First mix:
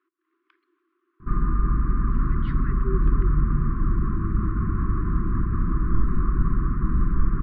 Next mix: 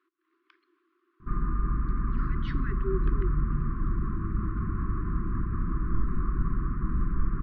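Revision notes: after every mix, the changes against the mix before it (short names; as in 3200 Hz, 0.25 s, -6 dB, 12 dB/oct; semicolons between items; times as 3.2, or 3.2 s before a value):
background -6.0 dB; master: remove air absorption 190 m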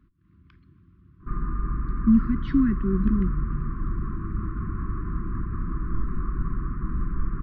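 speech: remove steep high-pass 330 Hz 72 dB/oct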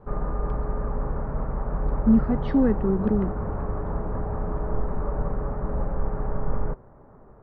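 background: entry -1.20 s; master: remove brick-wall FIR band-stop 390–1000 Hz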